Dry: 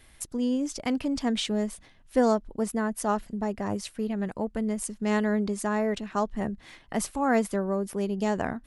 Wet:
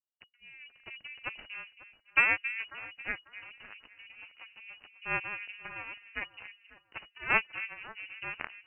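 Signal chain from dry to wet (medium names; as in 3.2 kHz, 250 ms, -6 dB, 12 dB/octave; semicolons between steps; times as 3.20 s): spectral noise reduction 12 dB; 3.48–3.90 s: treble shelf 2.3 kHz +5.5 dB; in parallel at -11.5 dB: hysteresis with a dead band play -24.5 dBFS; on the sum: Chebyshev shaper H 3 -10 dB, 6 -27 dB, 7 -44 dB, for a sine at -9.5 dBFS; on a send: echo whose repeats swap between lows and highs 272 ms, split 1.1 kHz, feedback 51%, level -11 dB; on the sum: frequency inversion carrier 2.9 kHz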